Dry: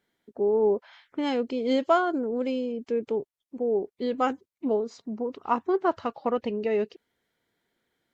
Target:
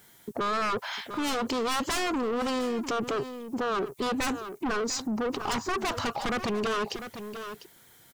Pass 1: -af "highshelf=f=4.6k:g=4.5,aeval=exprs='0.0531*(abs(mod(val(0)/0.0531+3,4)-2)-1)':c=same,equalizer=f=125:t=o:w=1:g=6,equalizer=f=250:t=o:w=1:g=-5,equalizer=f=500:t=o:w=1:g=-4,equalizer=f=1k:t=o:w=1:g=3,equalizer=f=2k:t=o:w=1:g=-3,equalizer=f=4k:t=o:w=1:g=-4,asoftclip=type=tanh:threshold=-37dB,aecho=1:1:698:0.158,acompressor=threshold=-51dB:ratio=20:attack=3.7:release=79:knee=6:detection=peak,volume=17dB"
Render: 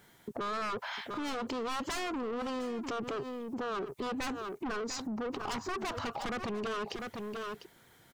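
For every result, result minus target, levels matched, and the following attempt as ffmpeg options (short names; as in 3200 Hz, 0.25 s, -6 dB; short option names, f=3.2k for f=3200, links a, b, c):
compressor: peak gain reduction +7 dB; 8000 Hz band -2.5 dB
-af "highshelf=f=4.6k:g=4.5,aeval=exprs='0.0531*(abs(mod(val(0)/0.0531+3,4)-2)-1)':c=same,equalizer=f=125:t=o:w=1:g=6,equalizer=f=250:t=o:w=1:g=-5,equalizer=f=500:t=o:w=1:g=-4,equalizer=f=1k:t=o:w=1:g=3,equalizer=f=2k:t=o:w=1:g=-3,equalizer=f=4k:t=o:w=1:g=-4,asoftclip=type=tanh:threshold=-37dB,aecho=1:1:698:0.158,acompressor=threshold=-43.5dB:ratio=20:attack=3.7:release=79:knee=6:detection=peak,volume=17dB"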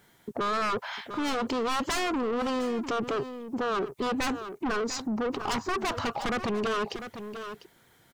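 8000 Hz band -3.0 dB
-af "highshelf=f=4.6k:g=16,aeval=exprs='0.0531*(abs(mod(val(0)/0.0531+3,4)-2)-1)':c=same,equalizer=f=125:t=o:w=1:g=6,equalizer=f=250:t=o:w=1:g=-5,equalizer=f=500:t=o:w=1:g=-4,equalizer=f=1k:t=o:w=1:g=3,equalizer=f=2k:t=o:w=1:g=-3,equalizer=f=4k:t=o:w=1:g=-4,asoftclip=type=tanh:threshold=-37dB,aecho=1:1:698:0.158,acompressor=threshold=-43.5dB:ratio=20:attack=3.7:release=79:knee=6:detection=peak,volume=17dB"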